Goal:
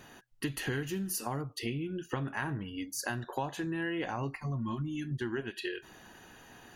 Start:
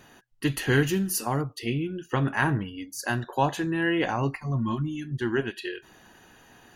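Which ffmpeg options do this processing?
ffmpeg -i in.wav -af "acompressor=threshold=-32dB:ratio=6" out.wav

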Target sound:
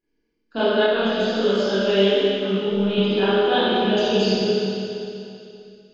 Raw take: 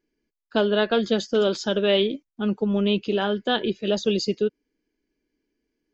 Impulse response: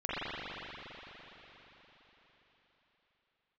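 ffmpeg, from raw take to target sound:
-filter_complex "[1:a]atrim=start_sample=2205,asetrate=70560,aresample=44100[link_01];[0:a][link_01]afir=irnorm=-1:irlink=0,asettb=1/sr,asplit=3[link_02][link_03][link_04];[link_02]atrim=end=0.864[link_05];[link_03]atrim=start=0.86:end=2.98,asetpts=PTS-STARTPTS,afade=type=in:duration=0.004:curve=qsin,afade=type=out:start_time=2.116:duration=0.004:curve=qsin,flanger=delay=18.5:depth=6.9:speed=1.3[link_06];[link_04]atrim=start=2.976[link_07];[link_05][link_06]acrossfade=duration=0.004:curve1=hsin:curve2=qsin[link_08];[link_08][link_07]acrossfade=duration=0.004:curve1=qsin:curve2=hsin"

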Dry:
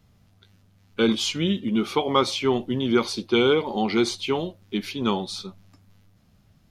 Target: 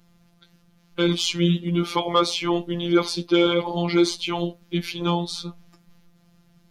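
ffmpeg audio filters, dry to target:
ffmpeg -i in.wav -af "afftfilt=real='hypot(re,im)*cos(PI*b)':imag='0':win_size=1024:overlap=0.75,acontrast=83,volume=-1.5dB" out.wav

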